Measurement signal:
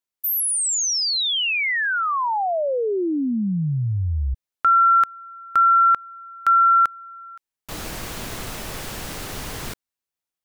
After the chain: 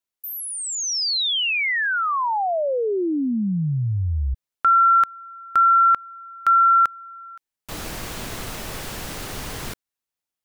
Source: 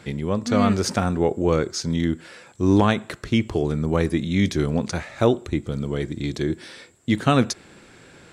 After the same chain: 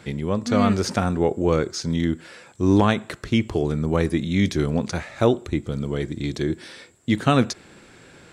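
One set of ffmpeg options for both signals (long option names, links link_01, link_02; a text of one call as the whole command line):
ffmpeg -i in.wav -filter_complex "[0:a]acrossover=split=5600[link_01][link_02];[link_02]acompressor=threshold=-32dB:ratio=4:attack=1:release=60[link_03];[link_01][link_03]amix=inputs=2:normalize=0" out.wav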